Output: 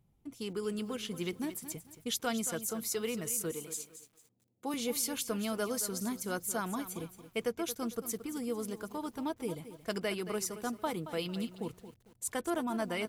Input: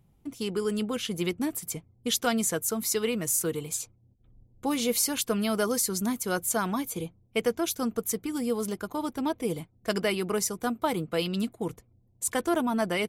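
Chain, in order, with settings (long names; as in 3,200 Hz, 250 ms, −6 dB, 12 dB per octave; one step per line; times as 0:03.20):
0:03.51–0:04.74: Bessel high-pass filter 210 Hz, order 4
feedback echo at a low word length 225 ms, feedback 35%, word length 8 bits, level −12 dB
level −7.5 dB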